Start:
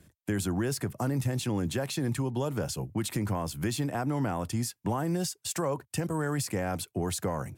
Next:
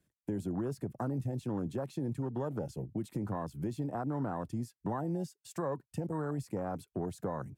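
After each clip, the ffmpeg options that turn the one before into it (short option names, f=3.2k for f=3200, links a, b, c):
-filter_complex "[0:a]afwtdn=0.0178,equalizer=f=84:w=1.9:g=-6.5,asplit=2[a][b];[b]acompressor=threshold=-37dB:ratio=6,volume=0dB[c];[a][c]amix=inputs=2:normalize=0,volume=-7dB"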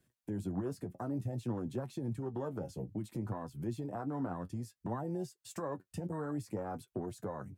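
-af "alimiter=level_in=7.5dB:limit=-24dB:level=0:latency=1:release=473,volume=-7.5dB,flanger=delay=8:depth=3.2:regen=43:speed=0.58:shape=sinusoidal,volume=6.5dB"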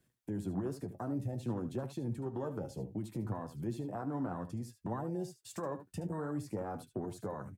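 -af "aecho=1:1:74:0.237"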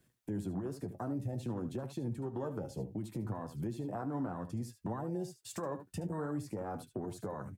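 -af "alimiter=level_in=8.5dB:limit=-24dB:level=0:latency=1:release=345,volume=-8.5dB,volume=3.5dB"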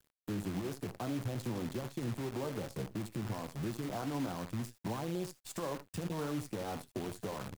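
-af "acrusher=bits=8:dc=4:mix=0:aa=0.000001"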